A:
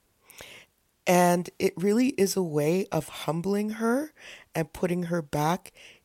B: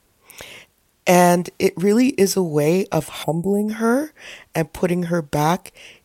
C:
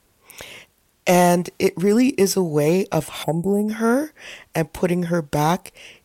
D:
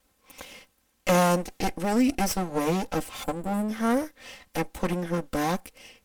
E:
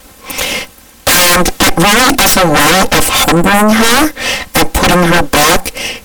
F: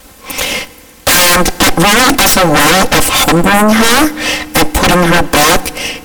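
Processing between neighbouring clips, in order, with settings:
time-frequency box 3.23–3.68 s, 900–6900 Hz -22 dB; trim +7.5 dB
saturation -5.5 dBFS, distortion -20 dB
comb filter that takes the minimum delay 3.8 ms; trim -5 dB
sine folder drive 19 dB, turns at -11.5 dBFS; trim +7.5 dB
FDN reverb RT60 2.3 s, low-frequency decay 1.4×, high-frequency decay 0.55×, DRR 19 dB

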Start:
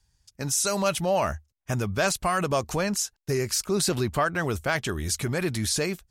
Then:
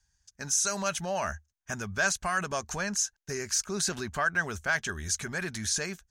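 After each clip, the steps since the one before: graphic EQ with 31 bands 125 Hz -10 dB, 315 Hz -9 dB, 500 Hz -6 dB, 1.6 kHz +10 dB, 6.3 kHz +10 dB, 12.5 kHz -9 dB; trim -6 dB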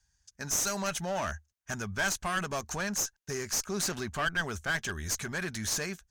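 one-sided clip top -32 dBFS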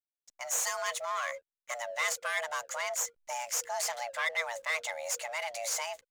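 frequency shift +470 Hz; hysteresis with a dead band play -51.5 dBFS; trim -1.5 dB

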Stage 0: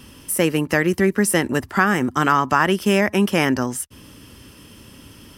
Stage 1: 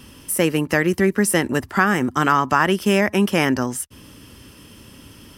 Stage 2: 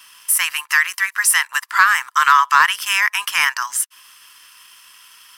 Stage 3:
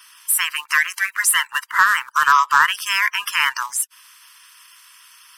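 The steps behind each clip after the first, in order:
no audible change
Chebyshev high-pass 1 kHz, order 5; waveshaping leveller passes 1; trim +4.5 dB
coarse spectral quantiser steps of 30 dB; trim -1 dB

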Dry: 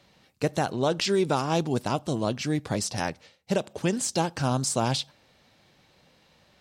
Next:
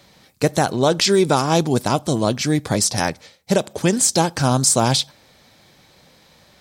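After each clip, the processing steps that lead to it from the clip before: treble shelf 6.7 kHz +8.5 dB; band-stop 2.8 kHz, Q 11; trim +8 dB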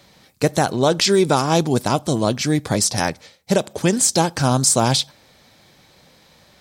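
no audible change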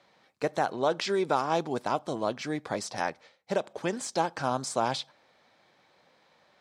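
band-pass filter 1 kHz, Q 0.6; trim -7 dB

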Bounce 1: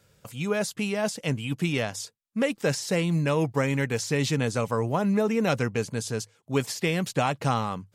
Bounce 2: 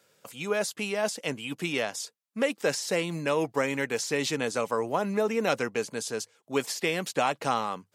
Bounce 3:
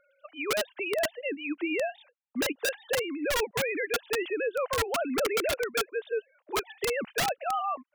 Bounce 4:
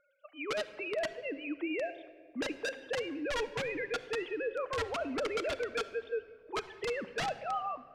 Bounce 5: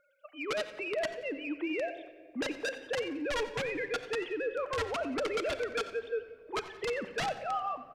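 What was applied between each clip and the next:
high-pass 300 Hz 12 dB/octave
formants replaced by sine waves; integer overflow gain 20 dB; peak limiter -26 dBFS, peak gain reduction 6 dB; trim +4 dB
distance through air 92 m; simulated room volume 2600 m³, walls mixed, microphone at 0.56 m; trim -5.5 dB
in parallel at -10 dB: saturation -37.5 dBFS, distortion -10 dB; on the sum: feedback delay 89 ms, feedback 38%, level -16 dB

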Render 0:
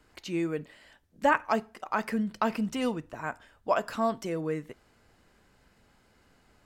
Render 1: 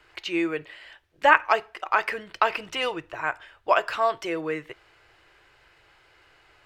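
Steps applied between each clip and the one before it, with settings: FFT filter 140 Hz 0 dB, 230 Hz -19 dB, 330 Hz +6 dB, 470 Hz +4 dB, 2.7 kHz +14 dB, 7.1 kHz +1 dB, 12 kHz -1 dB; trim -1.5 dB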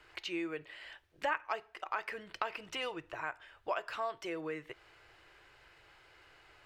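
compression 2:1, threshold -39 dBFS, peak gain reduction 15.5 dB; trim -3 dB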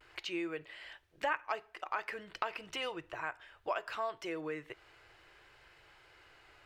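vibrato 0.4 Hz 24 cents

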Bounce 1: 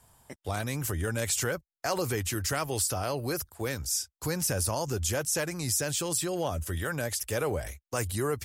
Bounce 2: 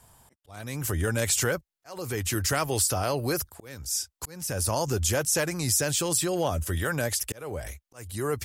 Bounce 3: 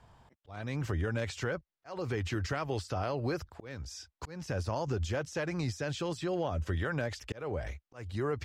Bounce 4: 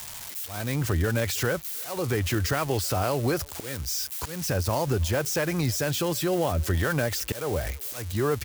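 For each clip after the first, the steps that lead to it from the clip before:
slow attack 501 ms; trim +4 dB
compression, threshold -28 dBFS, peak gain reduction 8 dB; distance through air 200 m
zero-crossing glitches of -32 dBFS; speakerphone echo 320 ms, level -25 dB; trim +7.5 dB

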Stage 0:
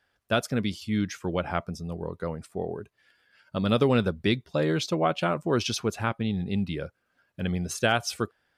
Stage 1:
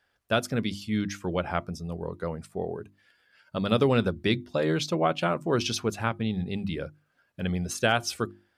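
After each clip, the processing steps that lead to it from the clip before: hum notches 50/100/150/200/250/300/350 Hz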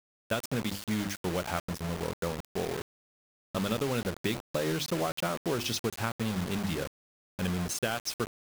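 compression 12:1, threshold -27 dBFS, peak gain reduction 10 dB; word length cut 6-bit, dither none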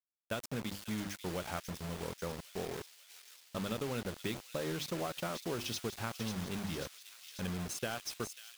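feedback echo behind a high-pass 542 ms, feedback 68%, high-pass 3.2 kHz, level -5.5 dB; trim -7 dB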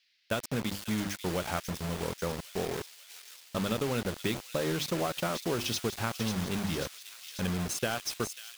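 band noise 1.8–5.1 kHz -78 dBFS; trim +6.5 dB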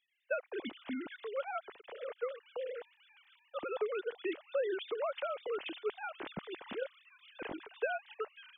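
formants replaced by sine waves; trim -6.5 dB

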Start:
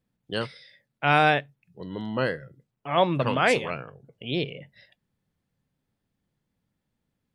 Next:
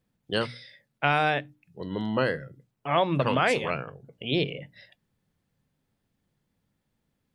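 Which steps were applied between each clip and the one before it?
hum notches 60/120/180/240/300 Hz; compression 6:1, threshold -22 dBFS, peak gain reduction 8 dB; trim +3 dB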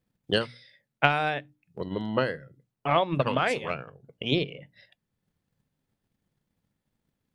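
transient shaper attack +9 dB, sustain -3 dB; trim -3.5 dB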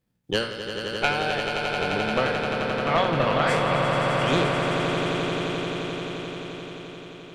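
spectral sustain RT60 0.48 s; valve stage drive 14 dB, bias 0.55; echo with a slow build-up 87 ms, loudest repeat 8, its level -8 dB; trim +2.5 dB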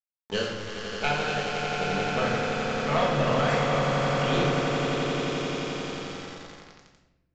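small samples zeroed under -28.5 dBFS; simulated room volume 370 m³, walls mixed, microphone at 1.5 m; resampled via 16 kHz; trim -6.5 dB

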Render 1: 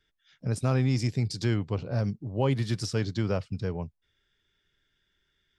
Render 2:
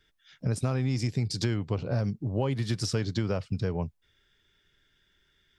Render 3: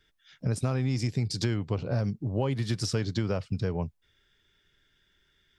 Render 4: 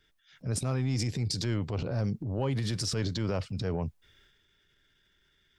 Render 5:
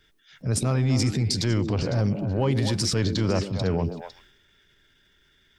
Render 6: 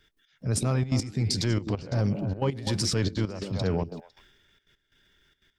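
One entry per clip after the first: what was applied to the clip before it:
compression, threshold -30 dBFS, peak gain reduction 9.5 dB; trim +5.5 dB
no audible change
transient shaper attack -7 dB, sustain +7 dB; in parallel at -11 dB: saturation -24.5 dBFS, distortion -16 dB; on the sum: trim -3 dB
repeats whose band climbs or falls 126 ms, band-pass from 280 Hz, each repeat 1.4 oct, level -3 dB; trim +6.5 dB
trance gate "x.x..xxxx" 180 bpm -12 dB; trim -2 dB

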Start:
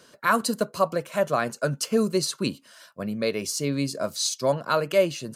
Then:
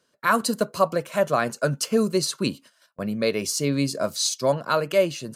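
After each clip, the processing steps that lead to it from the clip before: gate -46 dBFS, range -16 dB; in parallel at +2.5 dB: gain riding; on the sum: trim -5.5 dB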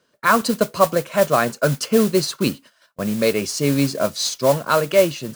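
treble shelf 7.3 kHz -11.5 dB; modulation noise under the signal 15 dB; trim +5 dB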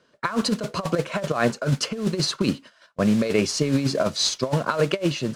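compressor with a negative ratio -20 dBFS, ratio -0.5; distance through air 73 m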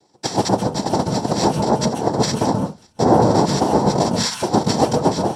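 noise-vocoded speech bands 2; reverberation RT60 0.20 s, pre-delay 129 ms, DRR 6 dB; trim -6 dB

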